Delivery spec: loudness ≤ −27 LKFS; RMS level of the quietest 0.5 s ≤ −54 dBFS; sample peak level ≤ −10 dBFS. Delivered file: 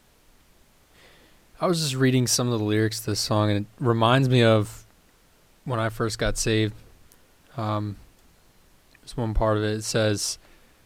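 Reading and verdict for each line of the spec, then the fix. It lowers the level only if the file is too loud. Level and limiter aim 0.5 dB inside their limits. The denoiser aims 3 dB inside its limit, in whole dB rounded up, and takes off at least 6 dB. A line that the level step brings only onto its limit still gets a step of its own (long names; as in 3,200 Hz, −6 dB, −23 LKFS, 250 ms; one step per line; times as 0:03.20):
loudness −24.0 LKFS: out of spec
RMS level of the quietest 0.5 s −58 dBFS: in spec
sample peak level −6.5 dBFS: out of spec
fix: level −3.5 dB
brickwall limiter −10.5 dBFS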